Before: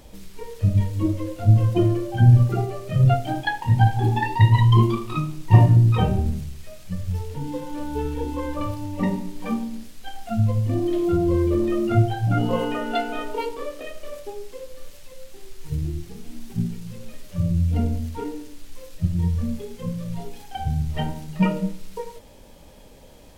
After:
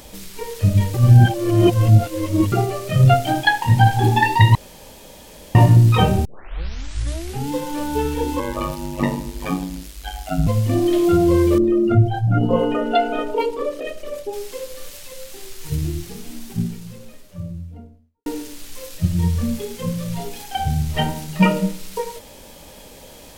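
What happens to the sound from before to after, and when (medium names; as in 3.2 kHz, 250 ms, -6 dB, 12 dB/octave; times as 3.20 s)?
0.94–2.52 s: reverse
4.55–5.55 s: room tone
6.25 s: tape start 1.26 s
8.39–10.47 s: ring modulator 49 Hz
11.58–14.33 s: resonances exaggerated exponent 1.5
15.90–18.26 s: studio fade out
whole clip: tilt EQ +1.5 dB/octave; loudness maximiser +9 dB; trim -1 dB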